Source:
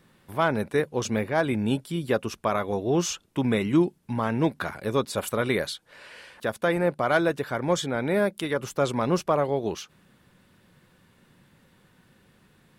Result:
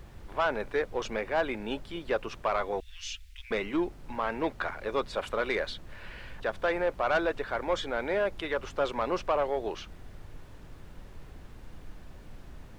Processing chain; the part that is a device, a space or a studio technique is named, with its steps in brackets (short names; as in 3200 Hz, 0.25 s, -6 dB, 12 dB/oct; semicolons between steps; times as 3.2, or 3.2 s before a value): aircraft cabin announcement (BPF 460–3300 Hz; soft clip -19 dBFS, distortion -15 dB; brown noise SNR 11 dB); 2.8–3.51 inverse Chebyshev band-stop 210–680 Hz, stop band 70 dB